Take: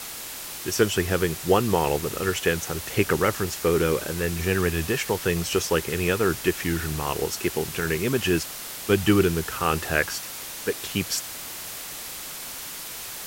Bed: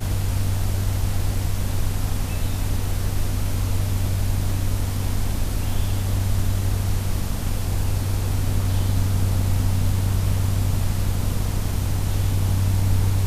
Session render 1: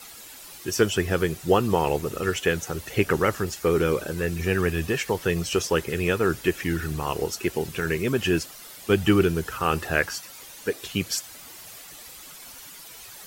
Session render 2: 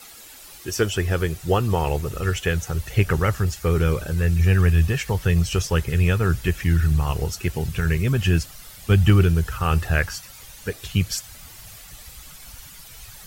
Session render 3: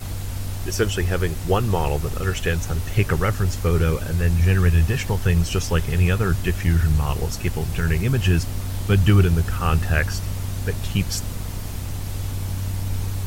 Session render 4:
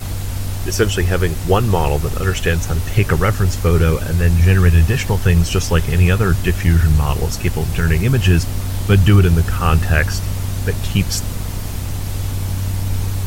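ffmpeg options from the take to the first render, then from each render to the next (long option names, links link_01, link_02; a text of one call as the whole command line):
ffmpeg -i in.wav -af "afftdn=noise_reduction=11:noise_floor=-37" out.wav
ffmpeg -i in.wav -af "bandreject=frequency=1000:width=25,asubboost=boost=10.5:cutoff=100" out.wav
ffmpeg -i in.wav -i bed.wav -filter_complex "[1:a]volume=-6dB[link_01];[0:a][link_01]amix=inputs=2:normalize=0" out.wav
ffmpeg -i in.wav -af "volume=5.5dB,alimiter=limit=-1dB:level=0:latency=1" out.wav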